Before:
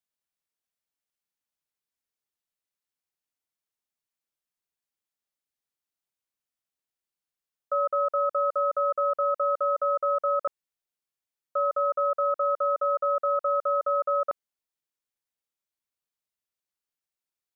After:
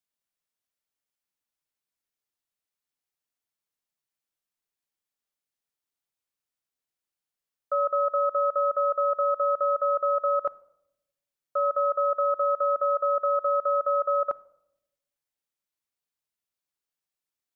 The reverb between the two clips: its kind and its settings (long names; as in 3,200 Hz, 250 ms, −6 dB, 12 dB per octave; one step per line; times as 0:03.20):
rectangular room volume 2,400 cubic metres, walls furnished, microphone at 0.36 metres